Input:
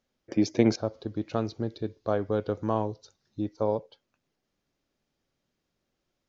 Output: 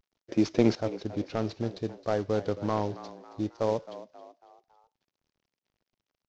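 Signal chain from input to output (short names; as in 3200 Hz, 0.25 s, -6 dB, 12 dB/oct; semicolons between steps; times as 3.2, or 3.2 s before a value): CVSD 32 kbps; frequency-shifting echo 0.271 s, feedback 44%, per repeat +83 Hz, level -15.5 dB; vibrato 0.62 Hz 40 cents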